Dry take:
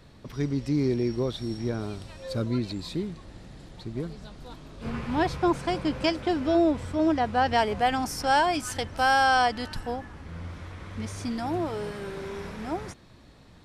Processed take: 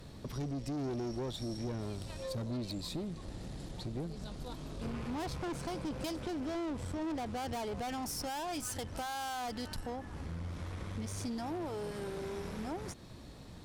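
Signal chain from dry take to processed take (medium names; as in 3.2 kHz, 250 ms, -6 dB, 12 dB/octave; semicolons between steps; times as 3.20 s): valve stage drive 30 dB, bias 0.5; treble shelf 9.3 kHz +6 dB; compression 3:1, threshold -43 dBFS, peak gain reduction 10 dB; peaking EQ 1.8 kHz -5 dB 1.9 oct; trim +5 dB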